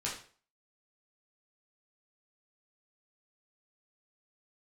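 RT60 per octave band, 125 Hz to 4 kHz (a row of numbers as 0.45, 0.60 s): 0.45, 0.40, 0.45, 0.40, 0.40, 0.40 s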